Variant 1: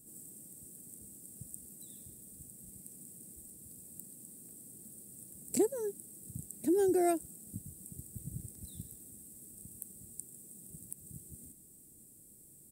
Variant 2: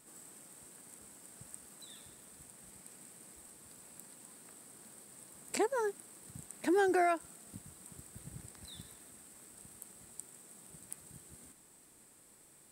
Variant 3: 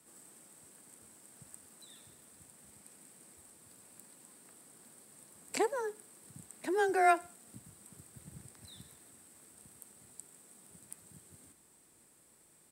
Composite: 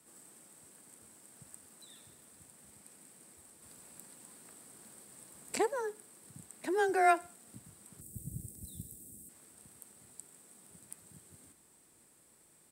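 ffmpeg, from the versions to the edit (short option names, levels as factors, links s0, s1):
-filter_complex "[2:a]asplit=3[s0][s1][s2];[s0]atrim=end=3.622[s3];[1:a]atrim=start=3.618:end=5.592[s4];[s1]atrim=start=5.588:end=8.012[s5];[0:a]atrim=start=8.008:end=9.292[s6];[s2]atrim=start=9.288[s7];[s3][s4]acrossfade=d=0.004:c1=hsin:c2=hsin[s8];[s8][s5]acrossfade=d=0.004:c1=hsin:c2=hsin[s9];[s9][s6]acrossfade=d=0.004:c1=hsin:c2=hsin[s10];[s10][s7]acrossfade=d=0.004:c1=hsin:c2=hsin"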